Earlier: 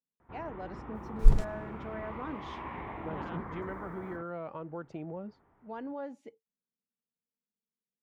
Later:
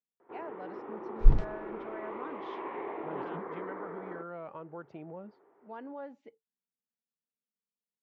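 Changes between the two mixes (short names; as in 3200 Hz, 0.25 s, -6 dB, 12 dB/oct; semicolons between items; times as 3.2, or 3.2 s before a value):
speech: add low shelf 400 Hz -7 dB; first sound: add resonant high-pass 400 Hz, resonance Q 3.5; master: add air absorption 190 m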